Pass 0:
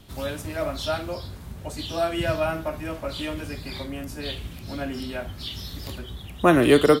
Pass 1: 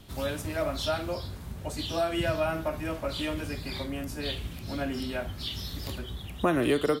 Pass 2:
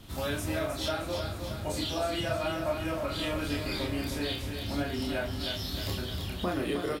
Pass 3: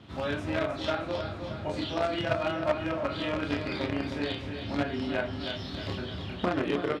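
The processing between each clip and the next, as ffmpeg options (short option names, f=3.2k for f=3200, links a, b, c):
-af "acompressor=threshold=-23dB:ratio=3,volume=-1dB"
-filter_complex "[0:a]asplit=2[a][b];[b]aecho=0:1:28|38:0.708|0.531[c];[a][c]amix=inputs=2:normalize=0,alimiter=limit=-22dB:level=0:latency=1:release=497,asplit=2[d][e];[e]aecho=0:1:312|624|936|1248|1560|1872|2184:0.447|0.25|0.14|0.0784|0.0439|0.0246|0.0138[f];[d][f]amix=inputs=2:normalize=0"
-filter_complex "[0:a]asplit=2[a][b];[b]acrusher=bits=3:mix=0:aa=0.000001,volume=-5.5dB[c];[a][c]amix=inputs=2:normalize=0,highpass=100,lowpass=3k,volume=1.5dB"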